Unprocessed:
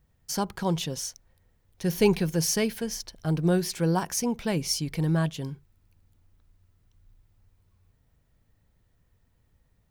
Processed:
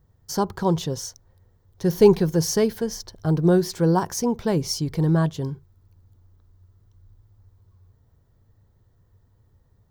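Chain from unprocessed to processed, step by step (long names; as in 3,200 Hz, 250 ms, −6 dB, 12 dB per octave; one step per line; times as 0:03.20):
graphic EQ with 15 bands 100 Hz +10 dB, 400 Hz +6 dB, 1,000 Hz +4 dB, 2,500 Hz −10 dB, 10,000 Hz −7 dB
level +2.5 dB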